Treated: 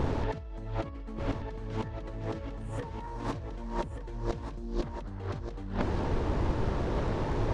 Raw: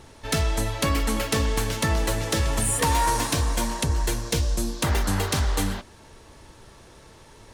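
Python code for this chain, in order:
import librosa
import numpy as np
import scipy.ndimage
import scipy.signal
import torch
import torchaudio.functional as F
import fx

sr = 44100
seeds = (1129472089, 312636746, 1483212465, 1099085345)

y = fx.tilt_shelf(x, sr, db=7.0, hz=1300.0)
y = fx.over_compress(y, sr, threshold_db=-35.0, ratio=-1.0)
y = fx.air_absorb(y, sr, metres=120.0)
y = y + 10.0 ** (-8.5 / 20.0) * np.pad(y, (int(1181 * sr / 1000.0), 0))[:len(y)]
y = fx.doppler_dist(y, sr, depth_ms=0.46)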